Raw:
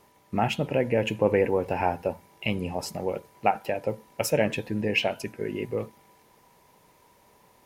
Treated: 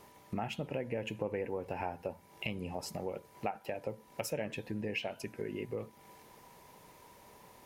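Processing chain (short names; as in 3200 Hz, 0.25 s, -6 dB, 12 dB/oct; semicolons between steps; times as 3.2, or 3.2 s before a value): compressor 3:1, threshold -41 dBFS, peak gain reduction 18 dB; gain +2 dB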